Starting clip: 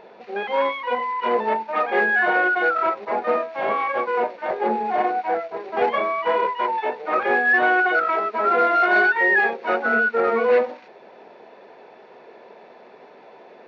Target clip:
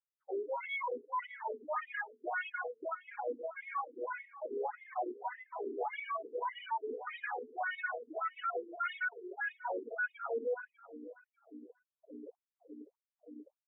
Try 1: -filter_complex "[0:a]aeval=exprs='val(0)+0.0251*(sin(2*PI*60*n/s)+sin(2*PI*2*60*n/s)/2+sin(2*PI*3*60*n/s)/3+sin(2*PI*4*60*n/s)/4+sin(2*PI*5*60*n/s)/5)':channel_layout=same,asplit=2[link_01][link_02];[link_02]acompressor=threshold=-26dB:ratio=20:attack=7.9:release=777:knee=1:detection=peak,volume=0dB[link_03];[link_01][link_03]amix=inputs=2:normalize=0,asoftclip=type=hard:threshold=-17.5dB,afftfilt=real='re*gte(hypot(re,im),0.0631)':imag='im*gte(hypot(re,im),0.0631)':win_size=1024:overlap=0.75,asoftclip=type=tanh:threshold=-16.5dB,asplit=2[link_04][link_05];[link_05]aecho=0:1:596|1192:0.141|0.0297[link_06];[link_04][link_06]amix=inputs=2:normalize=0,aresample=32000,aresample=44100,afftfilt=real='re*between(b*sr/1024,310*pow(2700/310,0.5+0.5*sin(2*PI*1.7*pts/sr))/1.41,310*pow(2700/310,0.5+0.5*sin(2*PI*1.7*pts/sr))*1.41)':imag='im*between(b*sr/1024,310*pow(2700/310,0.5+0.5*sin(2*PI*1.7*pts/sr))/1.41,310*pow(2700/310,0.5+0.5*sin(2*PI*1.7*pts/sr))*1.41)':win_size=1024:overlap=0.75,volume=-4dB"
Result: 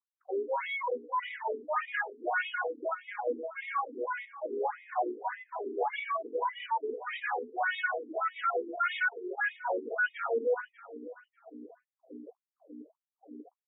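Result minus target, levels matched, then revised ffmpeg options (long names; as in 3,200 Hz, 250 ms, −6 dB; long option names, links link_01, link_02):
hard clipping: distortion −6 dB
-filter_complex "[0:a]aeval=exprs='val(0)+0.0251*(sin(2*PI*60*n/s)+sin(2*PI*2*60*n/s)/2+sin(2*PI*3*60*n/s)/3+sin(2*PI*4*60*n/s)/4+sin(2*PI*5*60*n/s)/5)':channel_layout=same,asplit=2[link_01][link_02];[link_02]acompressor=threshold=-26dB:ratio=20:attack=7.9:release=777:knee=1:detection=peak,volume=0dB[link_03];[link_01][link_03]amix=inputs=2:normalize=0,asoftclip=type=hard:threshold=-26dB,afftfilt=real='re*gte(hypot(re,im),0.0631)':imag='im*gte(hypot(re,im),0.0631)':win_size=1024:overlap=0.75,asoftclip=type=tanh:threshold=-16.5dB,asplit=2[link_04][link_05];[link_05]aecho=0:1:596|1192:0.141|0.0297[link_06];[link_04][link_06]amix=inputs=2:normalize=0,aresample=32000,aresample=44100,afftfilt=real='re*between(b*sr/1024,310*pow(2700/310,0.5+0.5*sin(2*PI*1.7*pts/sr))/1.41,310*pow(2700/310,0.5+0.5*sin(2*PI*1.7*pts/sr))*1.41)':imag='im*between(b*sr/1024,310*pow(2700/310,0.5+0.5*sin(2*PI*1.7*pts/sr))/1.41,310*pow(2700/310,0.5+0.5*sin(2*PI*1.7*pts/sr))*1.41)':win_size=1024:overlap=0.75,volume=-4dB"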